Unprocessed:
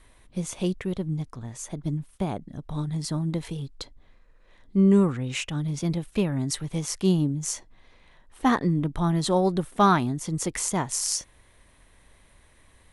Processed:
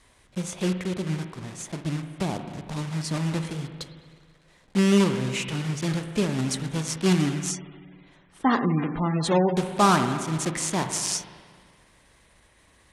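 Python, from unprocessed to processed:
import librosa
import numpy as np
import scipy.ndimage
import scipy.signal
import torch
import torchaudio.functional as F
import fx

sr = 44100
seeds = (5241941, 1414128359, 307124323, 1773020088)

y = fx.block_float(x, sr, bits=3)
y = fx.highpass(y, sr, hz=76.0, slope=6)
y = fx.rev_spring(y, sr, rt60_s=1.8, pass_ms=(38, 55), chirp_ms=70, drr_db=7.0)
y = fx.spec_gate(y, sr, threshold_db=-25, keep='strong', at=(7.5, 9.57))
y = scipy.signal.sosfilt(scipy.signal.butter(4, 10000.0, 'lowpass', fs=sr, output='sos'), y)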